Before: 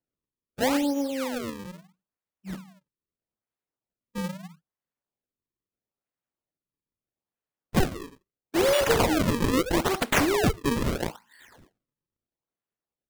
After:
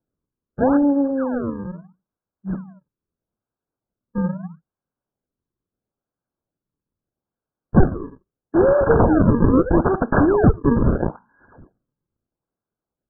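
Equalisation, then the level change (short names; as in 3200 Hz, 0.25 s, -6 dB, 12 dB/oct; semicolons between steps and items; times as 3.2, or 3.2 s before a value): brick-wall FIR low-pass 1700 Hz; low shelf 470 Hz +8 dB; +3.5 dB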